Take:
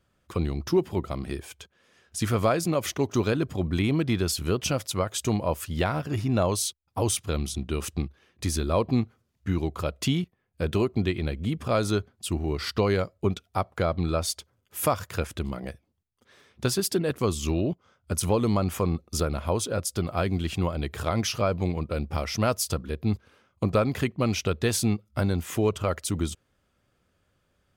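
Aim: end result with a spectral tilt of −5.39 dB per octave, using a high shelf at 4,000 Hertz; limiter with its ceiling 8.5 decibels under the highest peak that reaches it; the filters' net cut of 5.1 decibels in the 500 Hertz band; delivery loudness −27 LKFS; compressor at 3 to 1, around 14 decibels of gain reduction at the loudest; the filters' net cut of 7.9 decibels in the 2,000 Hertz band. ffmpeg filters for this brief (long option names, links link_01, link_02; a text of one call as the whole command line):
ffmpeg -i in.wav -af "equalizer=frequency=500:width_type=o:gain=-6,equalizer=frequency=2000:width_type=o:gain=-8.5,highshelf=frequency=4000:gain=-8.5,acompressor=threshold=-41dB:ratio=3,volume=18dB,alimiter=limit=-16.5dB:level=0:latency=1" out.wav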